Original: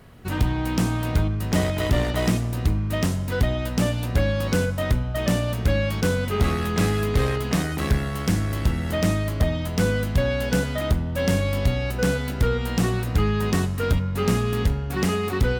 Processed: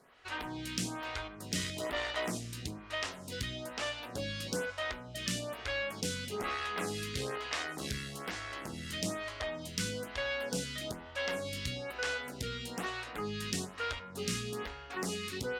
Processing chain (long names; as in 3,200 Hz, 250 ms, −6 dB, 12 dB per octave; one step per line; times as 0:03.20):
low-pass filter 6,300 Hz 12 dB per octave
spectral tilt +3.5 dB per octave
soft clipping −8.5 dBFS, distortion −27 dB
phaser with staggered stages 1.1 Hz
level −6.5 dB